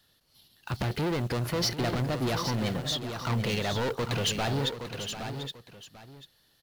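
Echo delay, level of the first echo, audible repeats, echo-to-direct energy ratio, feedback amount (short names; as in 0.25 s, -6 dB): 0.742 s, -12.0 dB, 3, -6.5 dB, no steady repeat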